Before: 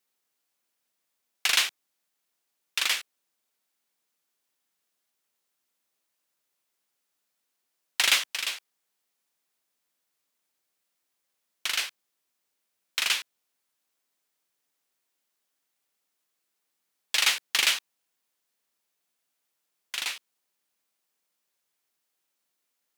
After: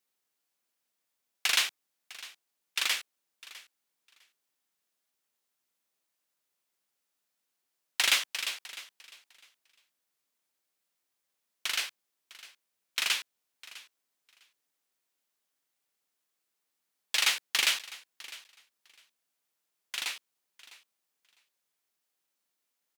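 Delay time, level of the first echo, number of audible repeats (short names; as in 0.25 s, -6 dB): 0.654 s, -19.0 dB, 2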